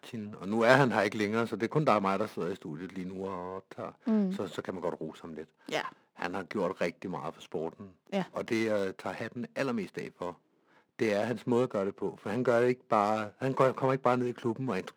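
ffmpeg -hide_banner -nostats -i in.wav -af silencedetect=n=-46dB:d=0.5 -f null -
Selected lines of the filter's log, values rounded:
silence_start: 10.33
silence_end: 10.99 | silence_duration: 0.66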